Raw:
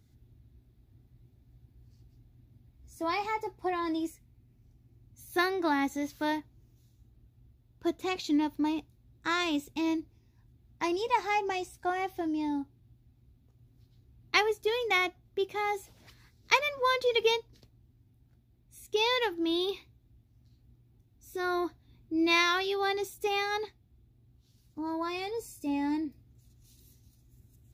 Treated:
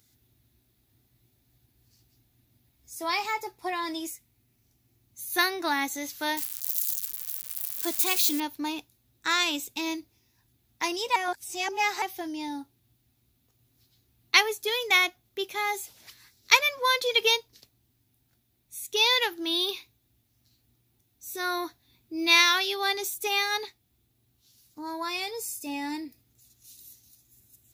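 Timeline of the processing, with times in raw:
6.37–8.4 switching spikes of -31 dBFS
11.16–12.02 reverse
whole clip: tilt +3.5 dB/oct; gain +2 dB

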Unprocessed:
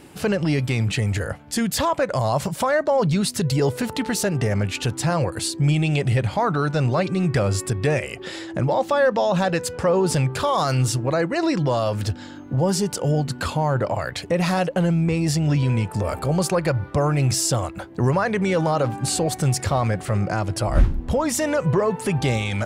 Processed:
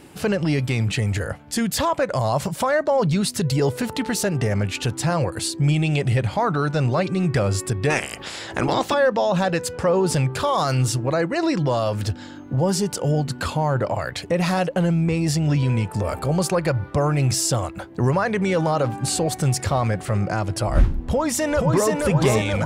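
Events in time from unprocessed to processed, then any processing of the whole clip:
7.89–8.93 spectral limiter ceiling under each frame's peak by 20 dB
21.02–21.93 echo throw 0.48 s, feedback 70%, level -3 dB

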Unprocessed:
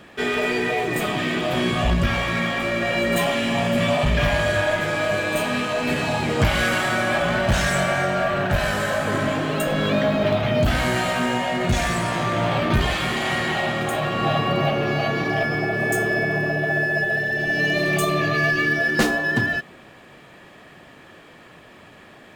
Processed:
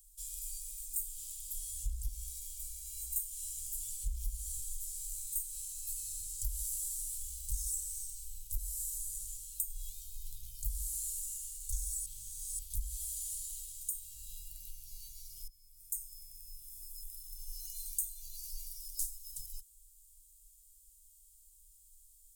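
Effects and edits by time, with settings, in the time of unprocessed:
6.74–7.48 short-mantissa float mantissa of 6-bit
12.06–12.59 reverse
15.48–16.67 fade in, from -19.5 dB
whole clip: inverse Chebyshev band-stop 180–1800 Hz, stop band 80 dB; compressor 3:1, threshold -43 dBFS; gain +8.5 dB

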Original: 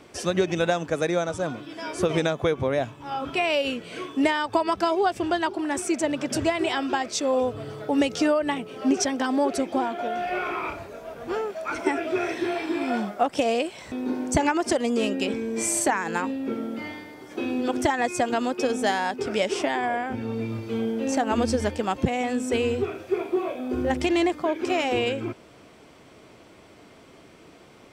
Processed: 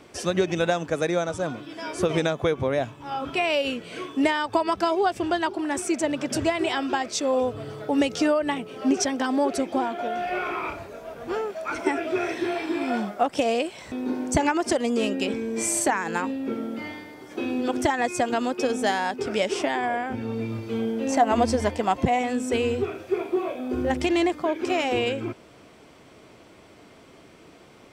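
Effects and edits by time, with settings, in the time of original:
21.1–22.19 small resonant body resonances 710/1000/2000 Hz, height 11 dB

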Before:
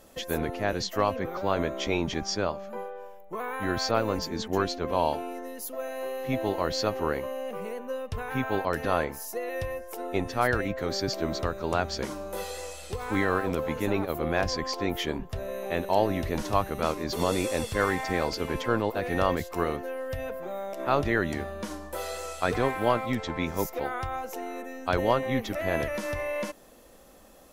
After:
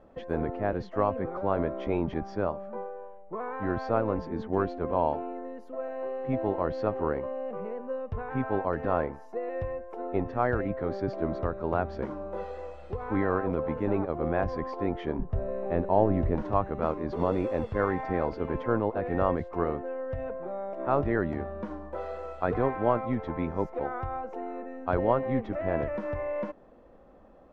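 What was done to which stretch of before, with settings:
15.18–16.35 tilt -1.5 dB/oct
whole clip: LPF 1200 Hz 12 dB/oct

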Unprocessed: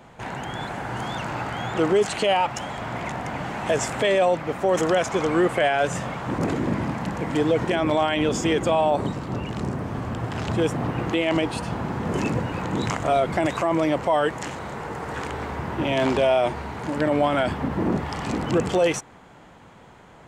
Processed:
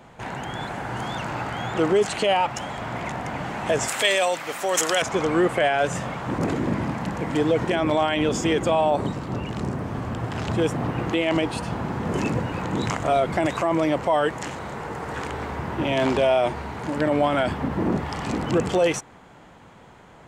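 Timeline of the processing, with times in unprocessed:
3.88–5.02 tilt +4.5 dB/oct

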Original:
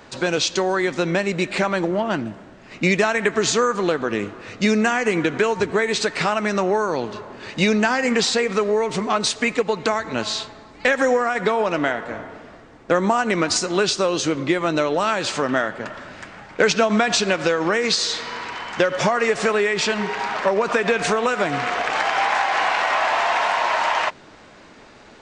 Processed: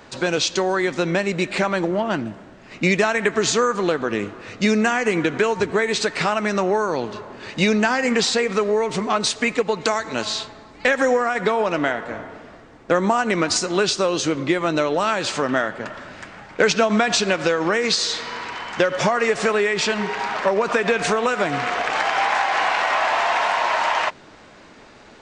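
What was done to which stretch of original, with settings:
9.81–10.25 tone controls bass -4 dB, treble +7 dB

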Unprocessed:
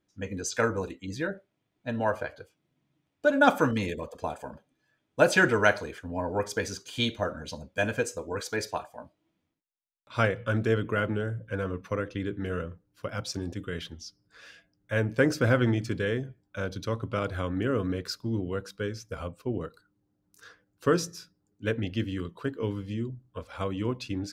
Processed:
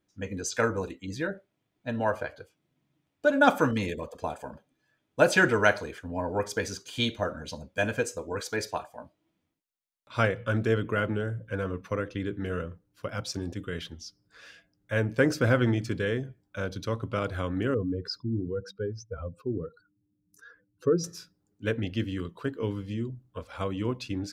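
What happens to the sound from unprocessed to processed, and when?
17.74–21.04 spectral contrast raised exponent 2

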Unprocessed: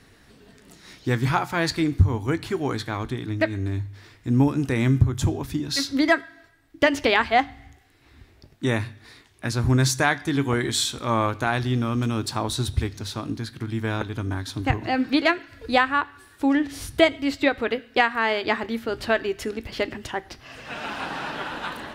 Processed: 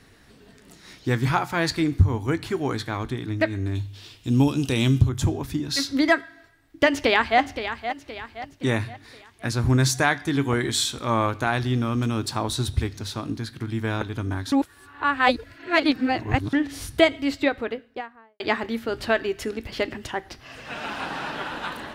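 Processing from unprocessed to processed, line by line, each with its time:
3.75–5.09 resonant high shelf 2400 Hz +6.5 dB, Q 3
6.85–7.4 echo throw 0.52 s, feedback 45%, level -10 dB
14.52–16.53 reverse
17.22–18.4 studio fade out

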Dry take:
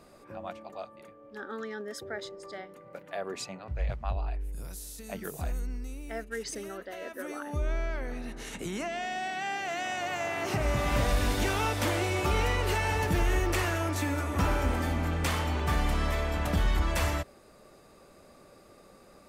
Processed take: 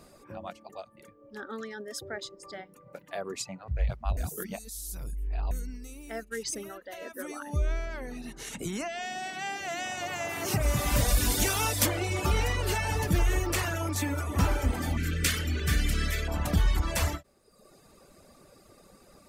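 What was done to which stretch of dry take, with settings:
4.17–5.51 reverse
10.28–11.85 high shelf 9600 Hz -> 4700 Hz +11.5 dB
14.97–16.28 EQ curve 440 Hz 0 dB, 920 Hz -19 dB, 1500 Hz +4 dB
whole clip: reverb removal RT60 0.9 s; tone controls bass +4 dB, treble +6 dB; ending taper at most 350 dB/s

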